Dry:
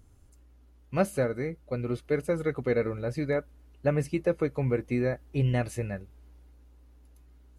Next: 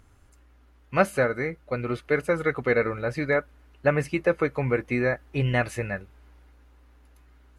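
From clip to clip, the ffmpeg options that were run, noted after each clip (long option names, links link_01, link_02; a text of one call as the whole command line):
ffmpeg -i in.wav -af "equalizer=frequency=1600:width_type=o:width=2.4:gain=11.5" out.wav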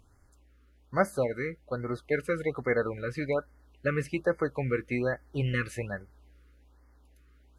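ffmpeg -i in.wav -af "afftfilt=real='re*(1-between(b*sr/1024,740*pow(3200/740,0.5+0.5*sin(2*PI*1.2*pts/sr))/1.41,740*pow(3200/740,0.5+0.5*sin(2*PI*1.2*pts/sr))*1.41))':imag='im*(1-between(b*sr/1024,740*pow(3200/740,0.5+0.5*sin(2*PI*1.2*pts/sr))/1.41,740*pow(3200/740,0.5+0.5*sin(2*PI*1.2*pts/sr))*1.41))':win_size=1024:overlap=0.75,volume=-4.5dB" out.wav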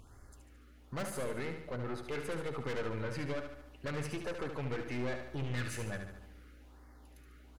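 ffmpeg -i in.wav -af "aeval=exprs='(tanh(44.7*val(0)+0.5)-tanh(0.5))/44.7':channel_layout=same,alimiter=level_in=15.5dB:limit=-24dB:level=0:latency=1:release=184,volume=-15.5dB,aecho=1:1:73|146|219|292|365|438|511:0.447|0.241|0.13|0.0703|0.038|0.0205|0.0111,volume=7.5dB" out.wav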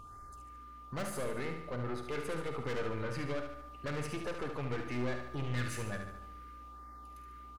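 ffmpeg -i in.wav -filter_complex "[0:a]aeval=exprs='val(0)+0.00316*sin(2*PI*1200*n/s)':channel_layout=same,asplit=2[link_01][link_02];[link_02]adelay=49,volume=-11dB[link_03];[link_01][link_03]amix=inputs=2:normalize=0" out.wav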